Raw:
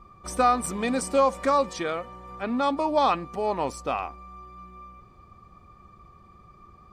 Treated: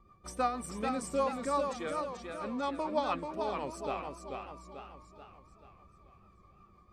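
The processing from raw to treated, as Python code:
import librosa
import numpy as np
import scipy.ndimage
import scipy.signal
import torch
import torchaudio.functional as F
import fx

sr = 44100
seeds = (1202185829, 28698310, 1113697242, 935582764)

y = fx.rotary(x, sr, hz=6.3)
y = fx.echo_warbled(y, sr, ms=436, feedback_pct=48, rate_hz=2.8, cents=115, wet_db=-5)
y = F.gain(torch.from_numpy(y), -8.0).numpy()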